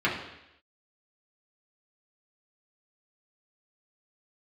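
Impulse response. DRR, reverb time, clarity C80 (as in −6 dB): −6.5 dB, 0.85 s, 8.5 dB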